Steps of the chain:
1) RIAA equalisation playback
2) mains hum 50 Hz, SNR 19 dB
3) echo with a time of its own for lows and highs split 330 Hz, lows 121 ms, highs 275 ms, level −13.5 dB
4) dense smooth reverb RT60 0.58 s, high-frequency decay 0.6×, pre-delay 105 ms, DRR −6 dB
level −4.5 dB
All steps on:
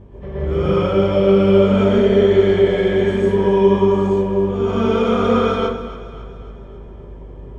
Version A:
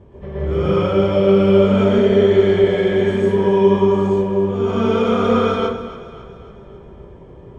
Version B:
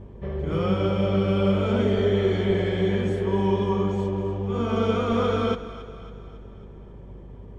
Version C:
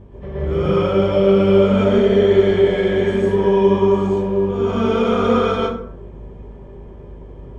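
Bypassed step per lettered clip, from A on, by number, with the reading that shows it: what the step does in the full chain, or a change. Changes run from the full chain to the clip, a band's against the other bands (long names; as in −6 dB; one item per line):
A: 2, change in momentary loudness spread −3 LU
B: 4, change in momentary loudness spread +4 LU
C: 3, change in momentary loudness spread −4 LU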